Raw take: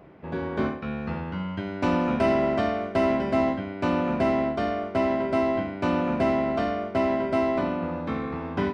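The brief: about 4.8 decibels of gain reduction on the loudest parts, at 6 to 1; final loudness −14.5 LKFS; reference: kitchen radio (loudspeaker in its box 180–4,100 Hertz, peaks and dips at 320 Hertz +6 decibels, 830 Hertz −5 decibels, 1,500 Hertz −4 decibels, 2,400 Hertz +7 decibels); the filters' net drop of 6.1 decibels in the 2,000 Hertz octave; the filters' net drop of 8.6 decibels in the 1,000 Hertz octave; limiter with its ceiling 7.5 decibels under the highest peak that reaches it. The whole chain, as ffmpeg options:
ffmpeg -i in.wav -af "equalizer=frequency=1000:width_type=o:gain=-8.5,equalizer=frequency=2000:width_type=o:gain=-7.5,acompressor=threshold=-26dB:ratio=6,alimiter=level_in=1.5dB:limit=-24dB:level=0:latency=1,volume=-1.5dB,highpass=180,equalizer=frequency=320:width_type=q:width=4:gain=6,equalizer=frequency=830:width_type=q:width=4:gain=-5,equalizer=frequency=1500:width_type=q:width=4:gain=-4,equalizer=frequency=2400:width_type=q:width=4:gain=7,lowpass=frequency=4100:width=0.5412,lowpass=frequency=4100:width=1.3066,volume=19.5dB" out.wav

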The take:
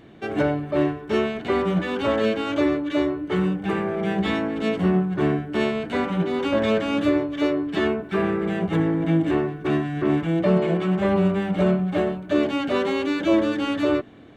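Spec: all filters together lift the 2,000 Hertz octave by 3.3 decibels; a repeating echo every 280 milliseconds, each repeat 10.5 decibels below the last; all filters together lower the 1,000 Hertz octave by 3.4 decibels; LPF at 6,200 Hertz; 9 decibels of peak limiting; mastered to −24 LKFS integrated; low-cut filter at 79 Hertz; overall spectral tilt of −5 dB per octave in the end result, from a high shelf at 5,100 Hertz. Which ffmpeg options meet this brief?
ffmpeg -i in.wav -af "highpass=79,lowpass=6200,equalizer=frequency=1000:width_type=o:gain=-6.5,equalizer=frequency=2000:width_type=o:gain=5,highshelf=frequency=5100:gain=6.5,alimiter=limit=-18dB:level=0:latency=1,aecho=1:1:280|560|840:0.299|0.0896|0.0269,volume=2.5dB" out.wav

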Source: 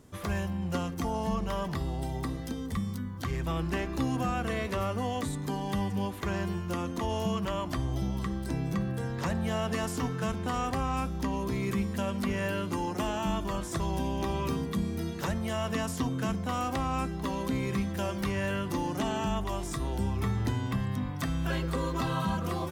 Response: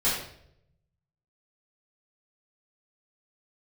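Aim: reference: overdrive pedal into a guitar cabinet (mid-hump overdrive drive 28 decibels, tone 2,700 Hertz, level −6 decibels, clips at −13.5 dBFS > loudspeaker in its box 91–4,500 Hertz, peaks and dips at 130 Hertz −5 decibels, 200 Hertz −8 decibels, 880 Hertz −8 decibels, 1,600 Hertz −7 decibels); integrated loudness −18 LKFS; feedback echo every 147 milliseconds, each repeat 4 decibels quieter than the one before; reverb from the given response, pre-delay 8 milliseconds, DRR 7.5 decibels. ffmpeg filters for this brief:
-filter_complex "[0:a]aecho=1:1:147|294|441|588|735|882|1029|1176|1323:0.631|0.398|0.25|0.158|0.0994|0.0626|0.0394|0.0249|0.0157,asplit=2[link_01][link_02];[1:a]atrim=start_sample=2205,adelay=8[link_03];[link_02][link_03]afir=irnorm=-1:irlink=0,volume=-19dB[link_04];[link_01][link_04]amix=inputs=2:normalize=0,asplit=2[link_05][link_06];[link_06]highpass=frequency=720:poles=1,volume=28dB,asoftclip=type=tanh:threshold=-13.5dB[link_07];[link_05][link_07]amix=inputs=2:normalize=0,lowpass=frequency=2700:poles=1,volume=-6dB,highpass=91,equalizer=frequency=130:width_type=q:width=4:gain=-5,equalizer=frequency=200:width_type=q:width=4:gain=-8,equalizer=frequency=880:width_type=q:width=4:gain=-8,equalizer=frequency=1600:width_type=q:width=4:gain=-7,lowpass=frequency=4500:width=0.5412,lowpass=frequency=4500:width=1.3066,volume=6.5dB"

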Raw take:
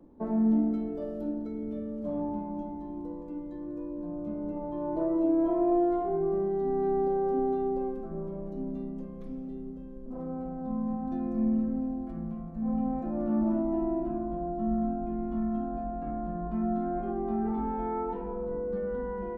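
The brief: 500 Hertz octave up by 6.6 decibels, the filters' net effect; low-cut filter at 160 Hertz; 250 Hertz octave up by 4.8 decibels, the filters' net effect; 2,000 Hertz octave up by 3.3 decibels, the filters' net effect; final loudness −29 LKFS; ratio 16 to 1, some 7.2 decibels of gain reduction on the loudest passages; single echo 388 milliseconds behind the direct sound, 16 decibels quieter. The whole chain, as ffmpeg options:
ffmpeg -i in.wav -af "highpass=160,equalizer=frequency=250:width_type=o:gain=4.5,equalizer=frequency=500:width_type=o:gain=7.5,equalizer=frequency=2000:width_type=o:gain=4,acompressor=threshold=-23dB:ratio=16,aecho=1:1:388:0.158" out.wav

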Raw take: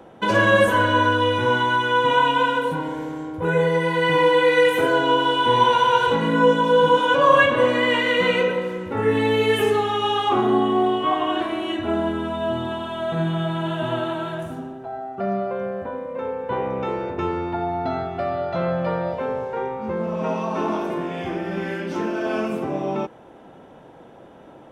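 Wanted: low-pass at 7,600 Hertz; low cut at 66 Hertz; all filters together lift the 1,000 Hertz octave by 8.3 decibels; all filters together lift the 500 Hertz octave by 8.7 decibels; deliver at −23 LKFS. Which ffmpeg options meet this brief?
ffmpeg -i in.wav -af "highpass=66,lowpass=7600,equalizer=frequency=500:width_type=o:gain=8,equalizer=frequency=1000:width_type=o:gain=7,volume=-9.5dB" out.wav

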